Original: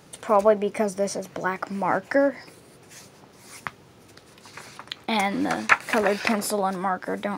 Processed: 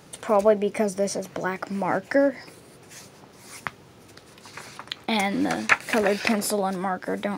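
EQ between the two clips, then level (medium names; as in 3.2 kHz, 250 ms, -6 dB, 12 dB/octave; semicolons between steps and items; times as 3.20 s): dynamic bell 1.1 kHz, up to -6 dB, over -35 dBFS, Q 1.3; +1.5 dB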